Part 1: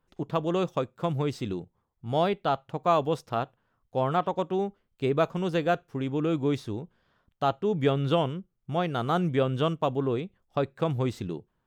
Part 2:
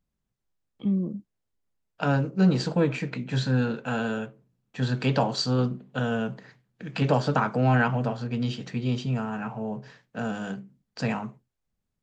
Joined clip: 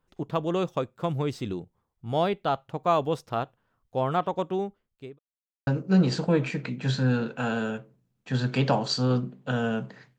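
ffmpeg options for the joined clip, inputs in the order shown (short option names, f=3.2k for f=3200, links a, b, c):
-filter_complex "[0:a]apad=whole_dur=10.18,atrim=end=10.18,asplit=2[a][b];[a]atrim=end=5.19,asetpts=PTS-STARTPTS,afade=t=out:st=4.52:d=0.67[c];[b]atrim=start=5.19:end=5.67,asetpts=PTS-STARTPTS,volume=0[d];[1:a]atrim=start=2.15:end=6.66,asetpts=PTS-STARTPTS,afade=t=in:d=0.004:c=hsin[e];[c][d][e]concat=n=3:v=0:a=1"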